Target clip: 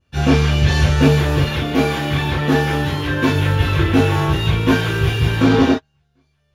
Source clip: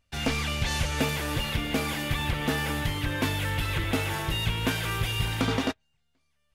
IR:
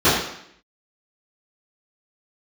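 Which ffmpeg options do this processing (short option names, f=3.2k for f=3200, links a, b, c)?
-filter_complex "[0:a]asettb=1/sr,asplit=3[a][b][c];[a]atrim=end=1.464[d];[b]atrim=start=1.46:end=3.33,asetpts=PTS-STARTPTS,afade=t=in:d=0.004:c=qsin,afade=t=out:st=1.866:d=0.004:c=qsin,lowshelf=f=130:g=-10.5[e];[c]atrim=start=3.326[f];[d][e]acrossfade=d=0.004:c1=hsin:c2=qsin[g];[g][f]acrossfade=d=0.004:c1=qsin:c2=hsin[h];[1:a]atrim=start_sample=2205,atrim=end_sample=3528[i];[h][i]afir=irnorm=-1:irlink=0,volume=-13dB"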